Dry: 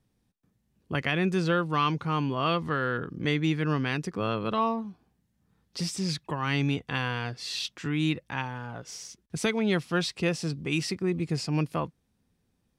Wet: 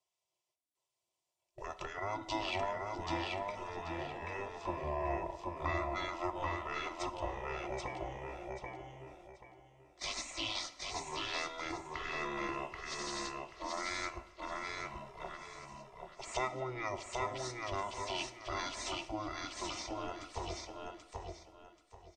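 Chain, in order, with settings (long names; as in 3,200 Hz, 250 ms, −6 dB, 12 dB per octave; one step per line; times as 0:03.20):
octave-band graphic EQ 125/250/500/2,000/8,000 Hz −5/−11/+11/−3/−3 dB
noise gate −40 dBFS, range −13 dB
wrong playback speed 78 rpm record played at 45 rpm
downward compressor, threshold −29 dBFS, peak gain reduction 11.5 dB
phaser with its sweep stopped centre 420 Hz, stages 6
gate on every frequency bin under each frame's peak −20 dB weak
comb filter 3 ms, depth 47%
on a send: repeating echo 783 ms, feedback 27%, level −3 dB
on the sum: dense smooth reverb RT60 1.1 s, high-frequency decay 0.6×, DRR 11.5 dB
level +11 dB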